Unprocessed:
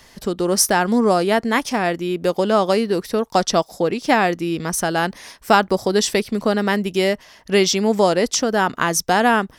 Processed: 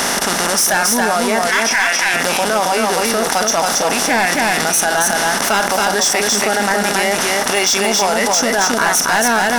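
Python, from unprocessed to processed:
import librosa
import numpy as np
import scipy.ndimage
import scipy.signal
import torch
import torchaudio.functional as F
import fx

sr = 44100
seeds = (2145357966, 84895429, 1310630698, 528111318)

p1 = fx.bin_compress(x, sr, power=0.2)
p2 = fx.weighting(p1, sr, curve='A', at=(1.47, 2.14))
p3 = fx.noise_reduce_blind(p2, sr, reduce_db=14)
p4 = fx.peak_eq(p3, sr, hz=410.0, db=-10.0, octaves=2.2)
p5 = fx.level_steps(p4, sr, step_db=17)
p6 = p4 + (p5 * librosa.db_to_amplitude(1.5))
p7 = 10.0 ** (-8.5 / 20.0) * np.tanh(p6 / 10.0 ** (-8.5 / 20.0))
p8 = p7 + 10.0 ** (-3.5 / 20.0) * np.pad(p7, (int(275 * sr / 1000.0), 0))[:len(p7)]
p9 = fx.env_flatten(p8, sr, amount_pct=70)
y = p9 * librosa.db_to_amplitude(-2.0)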